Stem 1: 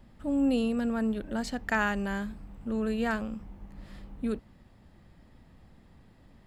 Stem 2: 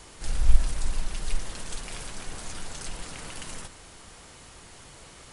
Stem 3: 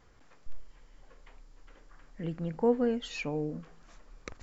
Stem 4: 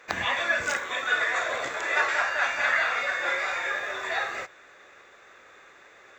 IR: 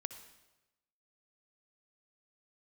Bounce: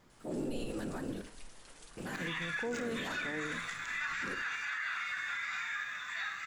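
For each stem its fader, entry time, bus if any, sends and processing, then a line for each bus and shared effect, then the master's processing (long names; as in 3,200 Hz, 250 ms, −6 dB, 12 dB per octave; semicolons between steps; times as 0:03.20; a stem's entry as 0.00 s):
−6.0 dB, 0.00 s, muted 0:01.29–0:01.97, send −3.5 dB, high-shelf EQ 5,800 Hz +11 dB; random phases in short frames
−12.0 dB, 0.10 s, no send, no processing
+2.5 dB, 0.00 s, no send, no processing
−6.0 dB, 2.05 s, send −4 dB, high-pass filter 1,200 Hz 24 dB per octave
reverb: on, RT60 1.0 s, pre-delay 57 ms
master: low-shelf EQ 170 Hz −9.5 dB; flanger 0.47 Hz, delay 5 ms, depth 5.8 ms, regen +84%; brickwall limiter −28.5 dBFS, peak gain reduction 12 dB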